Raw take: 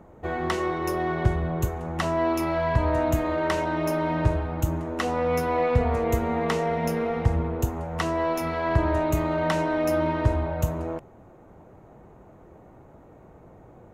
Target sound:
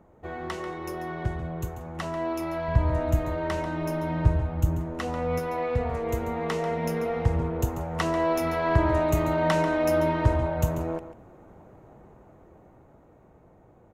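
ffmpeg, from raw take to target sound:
-filter_complex "[0:a]asettb=1/sr,asplit=3[a][b][c];[a]atrim=end=2.684[d];[b]atrim=start=2.68:end=5.39,asetpts=PTS-STARTPTS,afade=t=in:d=0.004:c=qsin,afade=t=out:st=2.706:d=0.004:c=qsin,lowshelf=f=170:g=10.5[e];[c]atrim=start=5.386[f];[d][e]acrossfade=d=0.004:c1=hsin:c2=qsin[g];[g][f]acrossfade=d=0.004:c1=qsin:c2=hsin,dynaudnorm=f=520:g=9:m=11.5dB,aecho=1:1:140:0.251,volume=-7dB"

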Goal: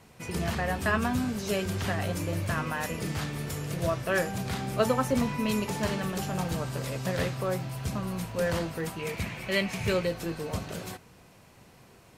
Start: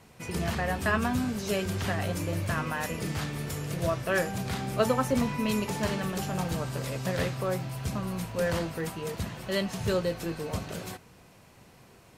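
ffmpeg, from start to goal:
-filter_complex "[0:a]asettb=1/sr,asplit=3[a][b][c];[a]atrim=end=8.994[d];[b]atrim=start=8.99:end=10.07,asetpts=PTS-STARTPTS,afade=t=in:d=0.004:c=qsin,afade=t=out:st=1.076:d=0.004:c=qsin,equalizer=f=2.3k:w=3.8:g=14.5[e];[c]atrim=start=10.066[f];[d][e]acrossfade=d=0.004:c1=hsin:c2=qsin[g];[g][f]acrossfade=d=0.004:c1=qsin:c2=hsin"

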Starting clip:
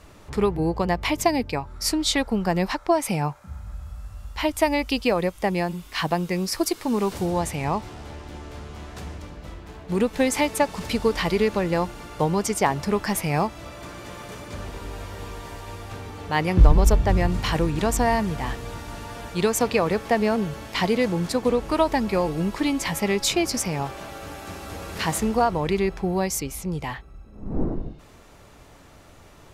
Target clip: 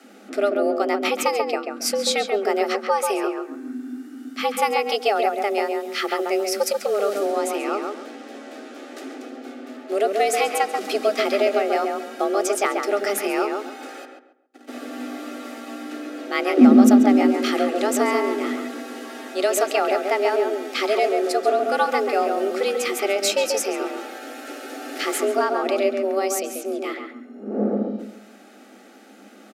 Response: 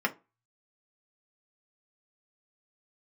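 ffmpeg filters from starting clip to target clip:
-filter_complex "[0:a]asplit=3[a][b][c];[a]afade=t=out:st=14.04:d=0.02[d];[b]agate=range=-55dB:threshold=-30dB:ratio=16:detection=peak,afade=t=in:st=14.04:d=0.02,afade=t=out:st=14.67:d=0.02[e];[c]afade=t=in:st=14.67:d=0.02[f];[d][e][f]amix=inputs=3:normalize=0,afreqshift=200,asuperstop=centerf=1000:order=4:qfactor=3.5,asplit=2[g][h];[h]adelay=137,lowpass=f=1.9k:p=1,volume=-3.5dB,asplit=2[i][j];[j]adelay=137,lowpass=f=1.9k:p=1,volume=0.3,asplit=2[k][l];[l]adelay=137,lowpass=f=1.9k:p=1,volume=0.3,asplit=2[m][n];[n]adelay=137,lowpass=f=1.9k:p=1,volume=0.3[o];[g][i][k][m][o]amix=inputs=5:normalize=0,asplit=2[p][q];[1:a]atrim=start_sample=2205[r];[q][r]afir=irnorm=-1:irlink=0,volume=-24.5dB[s];[p][s]amix=inputs=2:normalize=0"

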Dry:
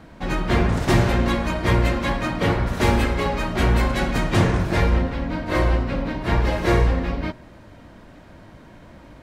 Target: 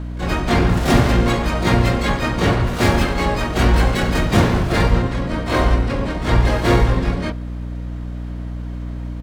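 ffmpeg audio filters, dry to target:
-filter_complex "[0:a]asplit=3[a][b][c];[b]asetrate=33038,aresample=44100,atempo=1.33484,volume=-5dB[d];[c]asetrate=88200,aresample=44100,atempo=0.5,volume=-6dB[e];[a][d][e]amix=inputs=3:normalize=0,aeval=exprs='val(0)+0.0447*(sin(2*PI*60*n/s)+sin(2*PI*2*60*n/s)/2+sin(2*PI*3*60*n/s)/3+sin(2*PI*4*60*n/s)/4+sin(2*PI*5*60*n/s)/5)':c=same,volume=1.5dB"

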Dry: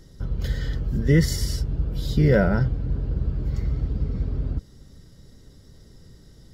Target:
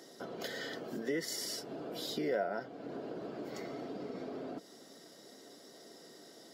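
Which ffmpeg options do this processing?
-af "highpass=f=290:w=0.5412,highpass=f=290:w=1.3066,equalizer=f=690:w=6.3:g=12,acompressor=threshold=-43dB:ratio=2.5,volume=3dB"

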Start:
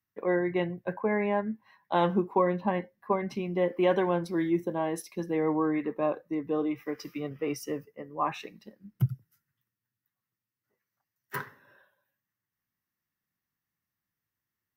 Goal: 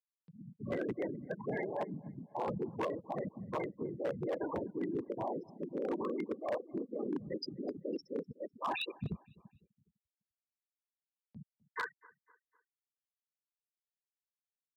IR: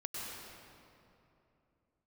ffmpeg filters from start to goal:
-filter_complex "[0:a]areverse,acompressor=threshold=-37dB:ratio=5,areverse,acrossover=split=210[a][b];[b]adelay=430[c];[a][c]amix=inputs=2:normalize=0,afftfilt=real='hypot(re,im)*cos(2*PI*random(0))':imag='hypot(re,im)*sin(2*PI*random(1))':win_size=512:overlap=0.75,afftfilt=real='re*gte(hypot(re,im),0.01)':imag='im*gte(hypot(re,im),0.01)':win_size=1024:overlap=0.75,acompressor=mode=upward:threshold=-60dB:ratio=2.5,asplit=2[d][e];[e]adelay=252,lowpass=f=2.9k:p=1,volume=-23dB,asplit=2[f][g];[g]adelay=252,lowpass=f=2.9k:p=1,volume=0.47,asplit=2[h][i];[i]adelay=252,lowpass=f=2.9k:p=1,volume=0.47[j];[f][h][j]amix=inputs=3:normalize=0[k];[d][k]amix=inputs=2:normalize=0,aresample=11025,aresample=44100,aemphasis=mode=production:type=75fm,aeval=exprs='0.0126*(abs(mod(val(0)/0.0126+3,4)-2)-1)':c=same,highpass=95,volume=10dB"

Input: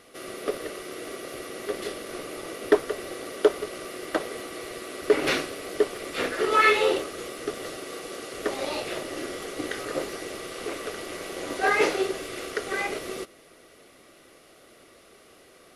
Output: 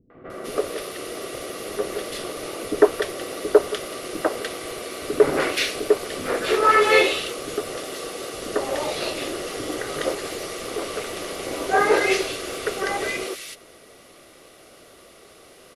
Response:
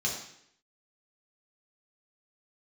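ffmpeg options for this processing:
-filter_complex "[0:a]acrossover=split=270|1800[a][b][c];[b]adelay=100[d];[c]adelay=300[e];[a][d][e]amix=inputs=3:normalize=0,volume=6dB"

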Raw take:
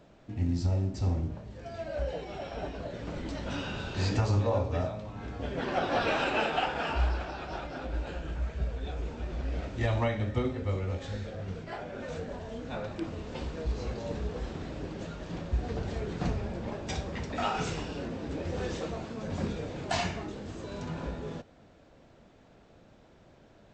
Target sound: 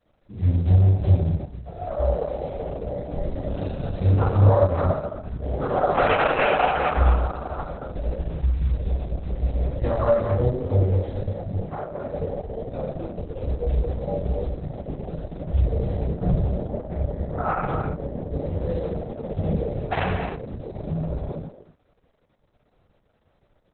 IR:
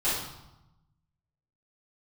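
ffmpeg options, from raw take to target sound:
-filter_complex "[0:a]afwtdn=0.0224,asplit=3[a][b][c];[a]afade=t=out:st=16.02:d=0.02[d];[b]lowpass=f=1.9k:w=0.5412,lowpass=f=1.9k:w=1.3066,afade=t=in:st=16.02:d=0.02,afade=t=out:st=18.33:d=0.02[e];[c]afade=t=in:st=18.33:d=0.02[f];[d][e][f]amix=inputs=3:normalize=0,aecho=1:1:1.6:0.39,acrusher=bits=8:mode=log:mix=0:aa=0.000001,asplit=2[g][h];[h]adelay=220,highpass=300,lowpass=3.4k,asoftclip=type=hard:threshold=-23dB,volume=-7dB[i];[g][i]amix=inputs=2:normalize=0[j];[1:a]atrim=start_sample=2205,afade=t=out:st=0.22:d=0.01,atrim=end_sample=10143,asetrate=57330,aresample=44100[k];[j][k]afir=irnorm=-1:irlink=0" -ar 48000 -c:a libopus -b:a 6k

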